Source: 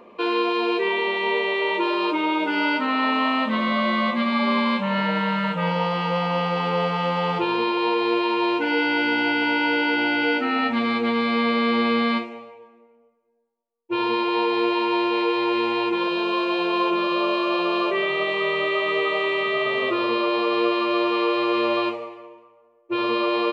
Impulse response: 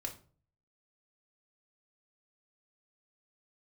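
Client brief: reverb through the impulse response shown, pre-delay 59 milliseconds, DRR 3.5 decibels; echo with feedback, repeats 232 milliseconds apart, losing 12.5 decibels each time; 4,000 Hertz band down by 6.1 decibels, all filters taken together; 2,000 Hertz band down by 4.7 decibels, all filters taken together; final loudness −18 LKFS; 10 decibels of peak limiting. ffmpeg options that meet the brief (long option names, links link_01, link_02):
-filter_complex "[0:a]equalizer=frequency=2000:width_type=o:gain=-4.5,equalizer=frequency=4000:width_type=o:gain=-6.5,alimiter=limit=-19dB:level=0:latency=1,aecho=1:1:232|464|696:0.237|0.0569|0.0137,asplit=2[link_01][link_02];[1:a]atrim=start_sample=2205,adelay=59[link_03];[link_02][link_03]afir=irnorm=-1:irlink=0,volume=-2.5dB[link_04];[link_01][link_04]amix=inputs=2:normalize=0,volume=7dB"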